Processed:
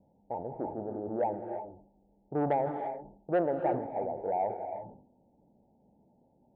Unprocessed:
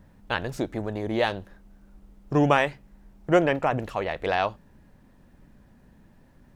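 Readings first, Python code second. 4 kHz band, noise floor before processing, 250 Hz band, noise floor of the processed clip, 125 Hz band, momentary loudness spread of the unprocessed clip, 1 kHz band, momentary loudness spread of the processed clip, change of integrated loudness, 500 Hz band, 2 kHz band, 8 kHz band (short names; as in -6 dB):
under -30 dB, -56 dBFS, -8.5 dB, -68 dBFS, -12.0 dB, 10 LU, -5.0 dB, 12 LU, -8.0 dB, -5.5 dB, -19.5 dB, n/a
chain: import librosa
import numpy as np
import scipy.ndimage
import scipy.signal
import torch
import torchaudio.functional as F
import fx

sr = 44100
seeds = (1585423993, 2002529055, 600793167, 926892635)

y = scipy.signal.sosfilt(scipy.signal.cheby1(8, 1.0, 900.0, 'lowpass', fs=sr, output='sos'), x)
y = 10.0 ** (-14.5 / 20.0) * np.tanh(y / 10.0 ** (-14.5 / 20.0))
y = fx.highpass(y, sr, hz=530.0, slope=6)
y = fx.rev_gated(y, sr, seeds[0], gate_ms=370, shape='rising', drr_db=6.5)
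y = fx.sustainer(y, sr, db_per_s=91.0)
y = y * librosa.db_to_amplitude(-1.5)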